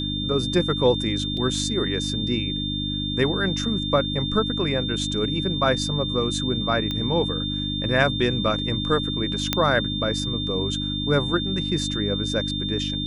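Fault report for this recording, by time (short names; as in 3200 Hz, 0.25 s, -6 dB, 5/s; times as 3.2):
hum 50 Hz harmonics 6 -29 dBFS
tone 3600 Hz -28 dBFS
1.37 gap 3 ms
6.91 pop -15 dBFS
9.53 pop -4 dBFS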